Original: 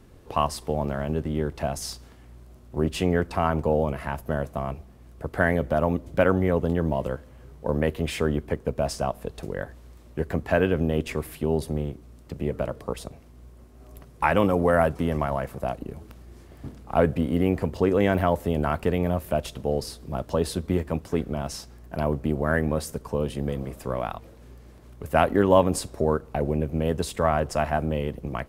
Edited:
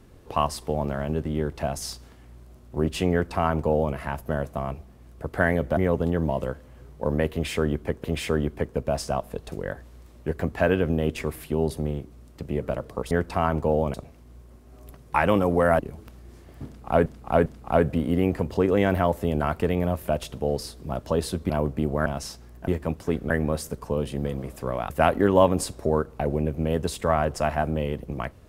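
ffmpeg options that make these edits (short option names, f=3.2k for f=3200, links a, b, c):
-filter_complex "[0:a]asplit=13[a][b][c][d][e][f][g][h][i][j][k][l][m];[a]atrim=end=5.772[n];[b]atrim=start=6.398:end=8.672[o];[c]atrim=start=7.948:end=13.022[p];[d]atrim=start=3.118:end=3.952[q];[e]atrim=start=13.018:end=14.872[r];[f]atrim=start=15.818:end=17.092[s];[g]atrim=start=16.688:end=17.092[t];[h]atrim=start=16.688:end=20.732[u];[i]atrim=start=21.968:end=22.532[v];[j]atrim=start=21.348:end=21.972[w];[k]atrim=start=20.728:end=21.352[x];[l]atrim=start=22.528:end=24.132[y];[m]atrim=start=25.048[z];[n][o]acrossfade=d=0.004:c1=hsin:c2=hsin[aa];[aa][p]acrossfade=d=0.004:c1=hsin:c2=hsin[ab];[ab][q]acrossfade=d=0.004:c1=hsin:c2=hsin[ac];[ac][r]acrossfade=d=0.004:c1=hsin:c2=hsin[ad];[ad][s]acrossfade=d=0.004:c1=hsin:c2=hsin[ae];[ae][t]acrossfade=d=0.004:c1=hsin:c2=hsin[af];[af][u]acrossfade=d=0.004:c1=hsin:c2=hsin[ag];[ag][v]acrossfade=d=0.004:c1=hsin:c2=hsin[ah];[ah][w]acrossfade=d=0.004:c1=hsin:c2=hsin[ai];[ai][x]acrossfade=d=0.004:c1=hsin:c2=hsin[aj];[aj][y]acrossfade=d=0.004:c1=hsin:c2=hsin[ak];[ak][z]acrossfade=d=0.004:c1=hsin:c2=hsin"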